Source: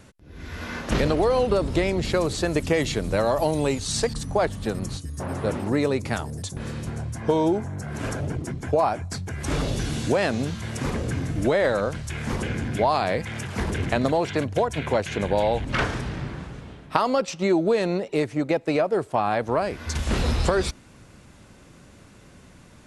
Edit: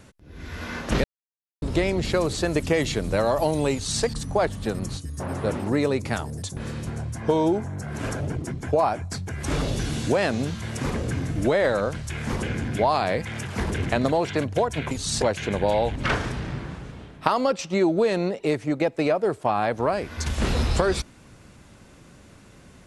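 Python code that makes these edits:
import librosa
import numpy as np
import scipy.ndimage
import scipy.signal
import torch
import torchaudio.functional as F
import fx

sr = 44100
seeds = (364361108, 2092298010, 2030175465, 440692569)

y = fx.edit(x, sr, fx.silence(start_s=1.04, length_s=0.58),
    fx.duplicate(start_s=3.73, length_s=0.31, to_s=14.91), tone=tone)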